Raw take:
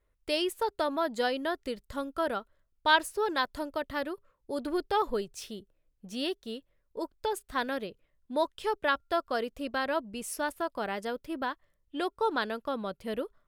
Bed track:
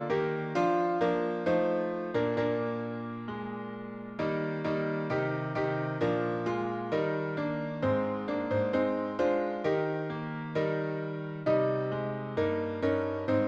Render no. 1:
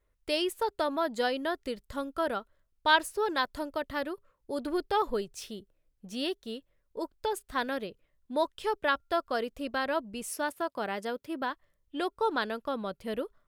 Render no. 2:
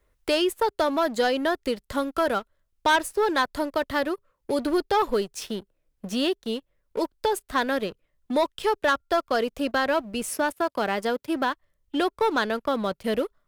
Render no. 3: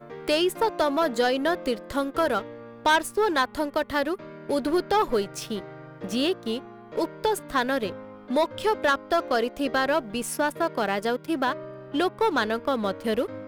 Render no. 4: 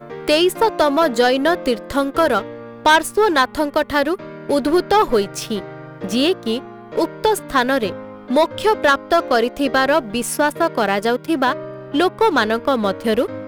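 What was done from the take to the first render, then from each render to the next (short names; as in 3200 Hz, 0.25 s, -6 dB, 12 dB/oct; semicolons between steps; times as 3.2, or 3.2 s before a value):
10.28–11.5 HPF 100 Hz
sample leveller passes 2; three-band squash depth 40%
add bed track -11 dB
gain +8 dB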